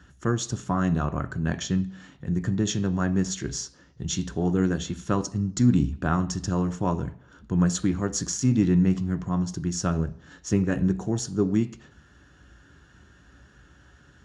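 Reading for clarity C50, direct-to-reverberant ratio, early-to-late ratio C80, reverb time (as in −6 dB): 16.5 dB, 8.5 dB, 20.0 dB, 0.55 s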